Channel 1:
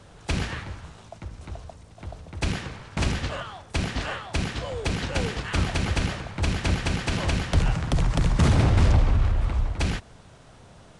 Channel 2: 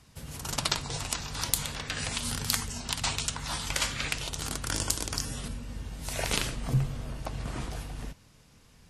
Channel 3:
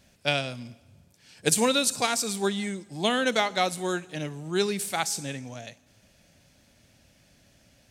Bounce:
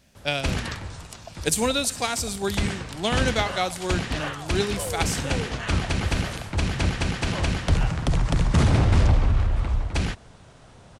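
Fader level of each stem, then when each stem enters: +0.5 dB, -11.0 dB, -0.5 dB; 0.15 s, 0.00 s, 0.00 s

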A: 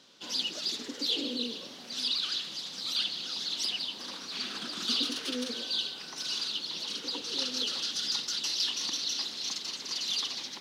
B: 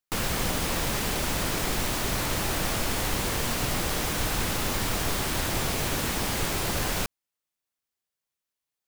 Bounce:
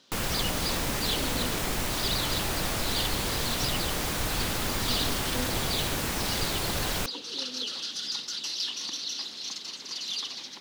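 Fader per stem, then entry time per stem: -1.5 dB, -2.0 dB; 0.00 s, 0.00 s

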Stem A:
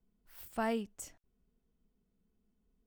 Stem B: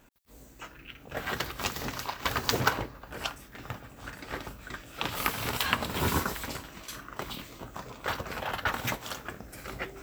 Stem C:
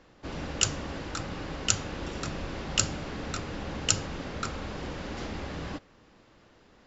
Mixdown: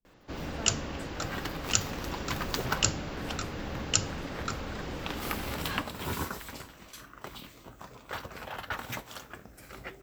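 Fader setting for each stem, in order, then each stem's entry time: -9.5 dB, -6.0 dB, -1.0 dB; 0.00 s, 0.05 s, 0.05 s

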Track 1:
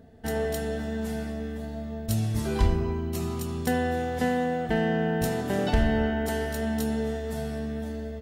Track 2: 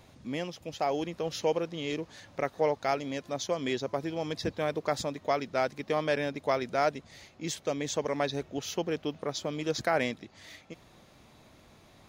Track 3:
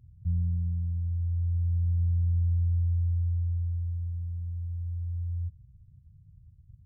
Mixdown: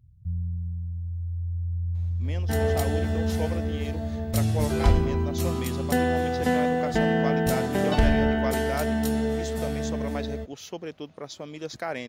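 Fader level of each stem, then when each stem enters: +2.5 dB, -4.5 dB, -2.0 dB; 2.25 s, 1.95 s, 0.00 s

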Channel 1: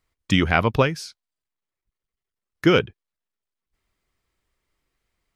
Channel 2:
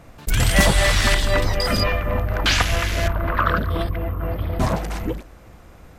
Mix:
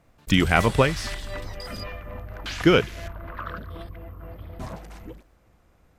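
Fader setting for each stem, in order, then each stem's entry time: -0.5 dB, -15.0 dB; 0.00 s, 0.00 s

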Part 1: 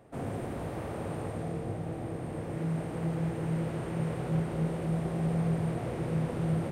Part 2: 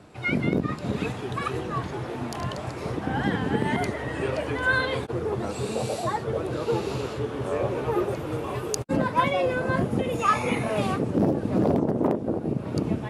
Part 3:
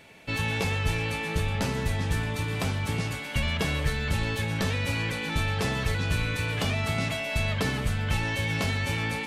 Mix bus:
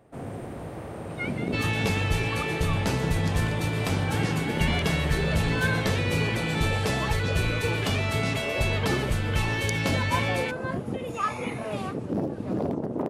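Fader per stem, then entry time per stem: -0.5 dB, -6.0 dB, +1.0 dB; 0.00 s, 0.95 s, 1.25 s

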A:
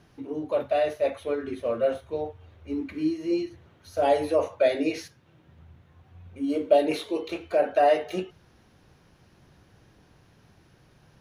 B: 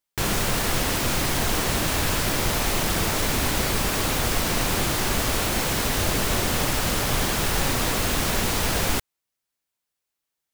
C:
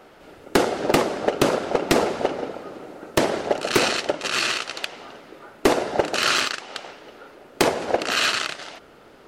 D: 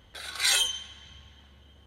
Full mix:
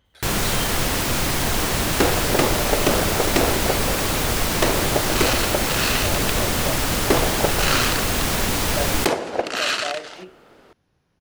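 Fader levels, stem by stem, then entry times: -10.5 dB, +2.0 dB, -1.5 dB, -8.5 dB; 2.05 s, 0.05 s, 1.45 s, 0.00 s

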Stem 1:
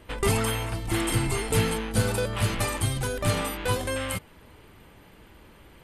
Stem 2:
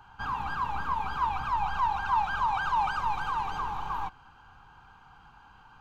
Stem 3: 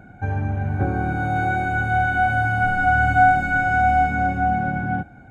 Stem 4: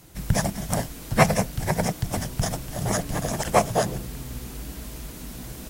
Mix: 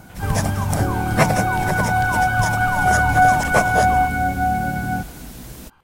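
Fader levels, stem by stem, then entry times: -13.5 dB, -1.5 dB, +0.5 dB, +1.0 dB; 0.00 s, 0.00 s, 0.00 s, 0.00 s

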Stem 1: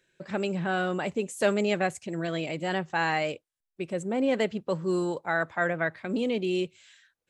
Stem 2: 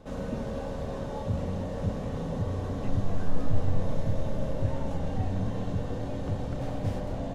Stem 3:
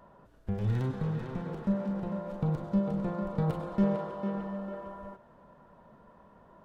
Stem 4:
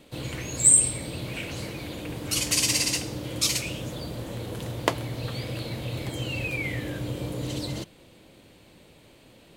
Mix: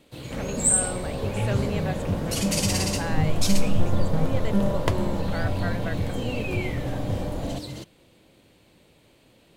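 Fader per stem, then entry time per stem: -7.0 dB, +2.5 dB, +2.0 dB, -4.0 dB; 0.05 s, 0.25 s, 0.75 s, 0.00 s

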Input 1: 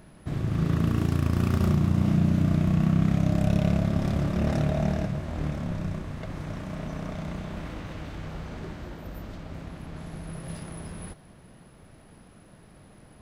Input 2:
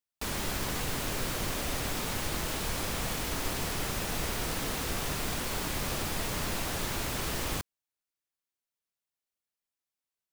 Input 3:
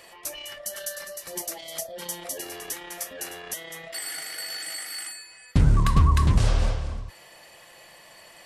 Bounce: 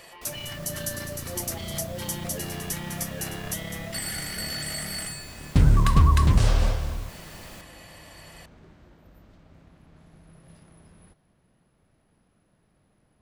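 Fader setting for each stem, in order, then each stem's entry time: -14.5 dB, -12.5 dB, +1.0 dB; 0.00 s, 0.00 s, 0.00 s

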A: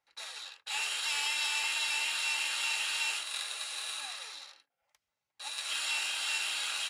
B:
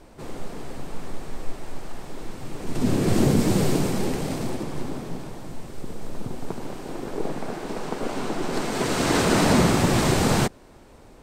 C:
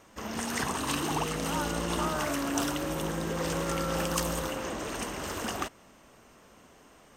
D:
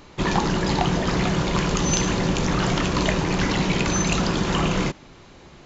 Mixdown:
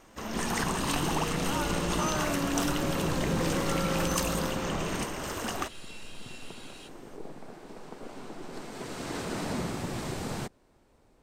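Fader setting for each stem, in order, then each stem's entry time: -15.5 dB, -14.5 dB, 0.0 dB, -13.0 dB; 0.00 s, 0.00 s, 0.00 s, 0.15 s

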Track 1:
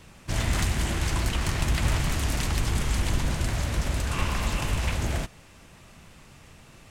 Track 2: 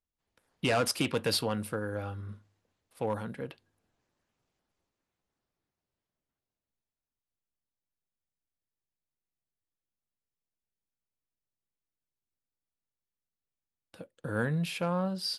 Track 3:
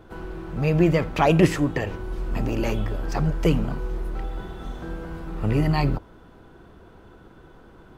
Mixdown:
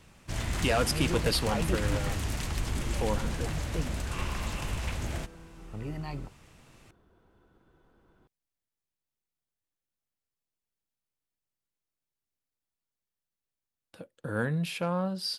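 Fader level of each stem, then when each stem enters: -6.5 dB, +0.5 dB, -16.0 dB; 0.00 s, 0.00 s, 0.30 s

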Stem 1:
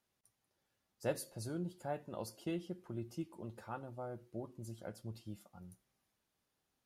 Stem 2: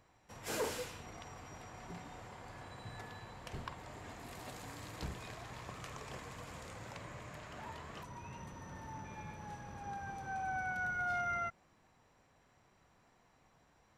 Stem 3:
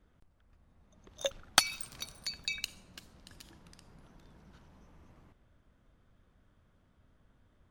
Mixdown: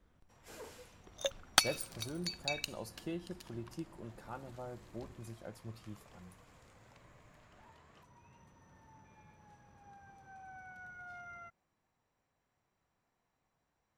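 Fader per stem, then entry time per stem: -1.5 dB, -13.5 dB, -2.0 dB; 0.60 s, 0.00 s, 0.00 s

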